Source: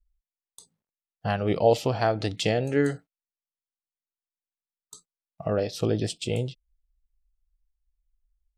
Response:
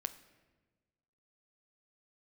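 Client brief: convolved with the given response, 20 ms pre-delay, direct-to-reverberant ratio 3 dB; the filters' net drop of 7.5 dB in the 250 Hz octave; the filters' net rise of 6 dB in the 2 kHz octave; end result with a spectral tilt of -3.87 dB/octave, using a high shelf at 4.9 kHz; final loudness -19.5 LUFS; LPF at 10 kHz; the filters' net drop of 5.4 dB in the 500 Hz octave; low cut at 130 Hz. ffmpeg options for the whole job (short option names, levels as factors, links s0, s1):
-filter_complex "[0:a]highpass=130,lowpass=10000,equalizer=f=250:t=o:g=-8,equalizer=f=500:t=o:g=-5,equalizer=f=2000:t=o:g=7.5,highshelf=f=4900:g=3.5,asplit=2[s0][s1];[1:a]atrim=start_sample=2205,adelay=20[s2];[s1][s2]afir=irnorm=-1:irlink=0,volume=0.794[s3];[s0][s3]amix=inputs=2:normalize=0,volume=2.51"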